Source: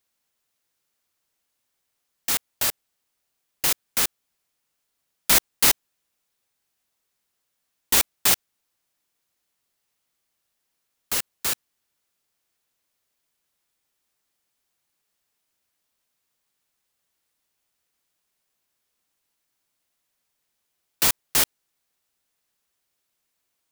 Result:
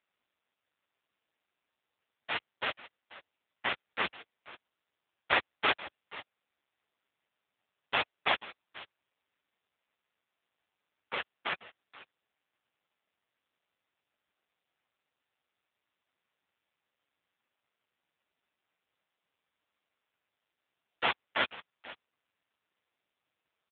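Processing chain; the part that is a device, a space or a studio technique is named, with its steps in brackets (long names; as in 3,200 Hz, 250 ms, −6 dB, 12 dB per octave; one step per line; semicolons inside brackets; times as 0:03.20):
satellite phone (band-pass filter 360–3,200 Hz; single-tap delay 489 ms −18 dB; level +5 dB; AMR narrowband 5.9 kbit/s 8,000 Hz)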